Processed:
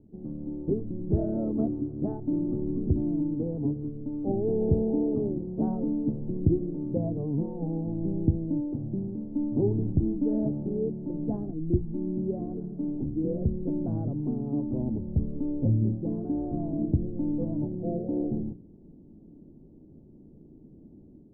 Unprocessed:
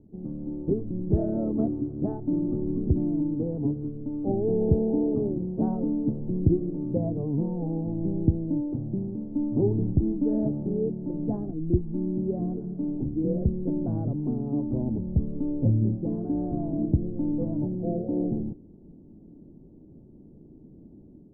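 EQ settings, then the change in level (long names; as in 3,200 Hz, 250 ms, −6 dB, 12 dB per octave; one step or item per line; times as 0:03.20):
high-frequency loss of the air 310 metres
mains-hum notches 60/120/180 Hz
−1.0 dB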